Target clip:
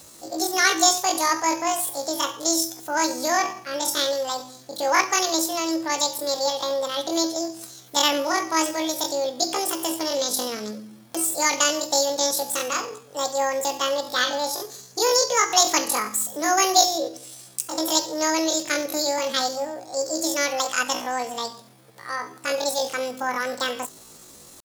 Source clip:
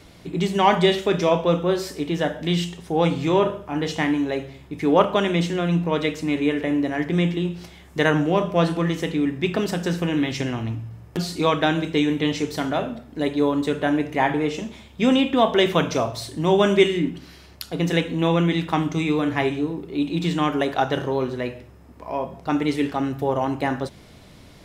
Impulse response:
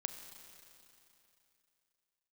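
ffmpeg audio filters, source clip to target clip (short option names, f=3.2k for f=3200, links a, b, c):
-af "asetrate=83250,aresample=44100,atempo=0.529732,bass=f=250:g=-5,treble=f=4k:g=14,volume=-3.5dB"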